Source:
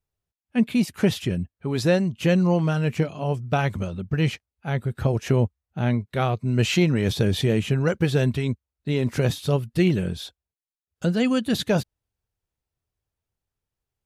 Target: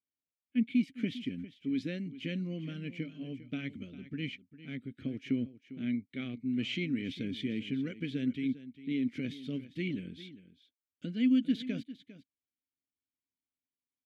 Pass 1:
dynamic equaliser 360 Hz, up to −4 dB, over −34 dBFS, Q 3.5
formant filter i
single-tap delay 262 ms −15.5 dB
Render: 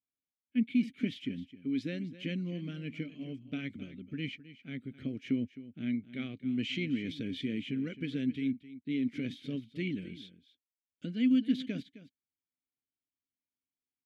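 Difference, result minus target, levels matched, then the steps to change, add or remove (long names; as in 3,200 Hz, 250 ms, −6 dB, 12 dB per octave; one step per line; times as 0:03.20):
echo 139 ms early
change: single-tap delay 401 ms −15.5 dB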